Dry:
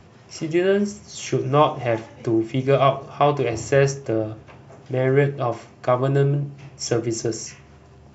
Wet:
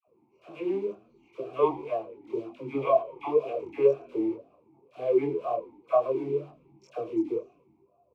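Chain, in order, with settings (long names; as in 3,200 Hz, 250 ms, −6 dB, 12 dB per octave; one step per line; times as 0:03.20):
adaptive Wiener filter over 25 samples
dynamic equaliser 470 Hz, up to +5 dB, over −35 dBFS, Q 5.4
in parallel at −5 dB: bit reduction 5 bits
on the sum: all-pass dispersion lows, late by 75 ms, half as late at 820 Hz
on a send: echo with shifted repeats 113 ms, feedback 50%, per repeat −85 Hz, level −18.5 dB
on the sum: multi-voice chorus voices 2, 1.1 Hz, delay 24 ms, depth 3 ms
formant filter swept between two vowels a-u 2 Hz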